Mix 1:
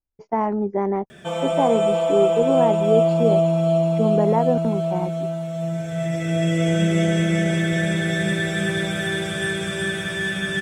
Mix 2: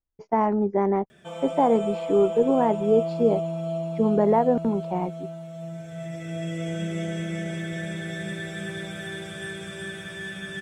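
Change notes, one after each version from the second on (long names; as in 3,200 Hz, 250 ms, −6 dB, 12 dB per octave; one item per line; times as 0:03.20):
background −10.5 dB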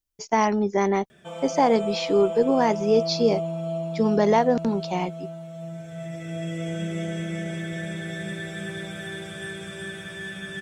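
speech: remove low-pass filter 1,100 Hz 12 dB per octave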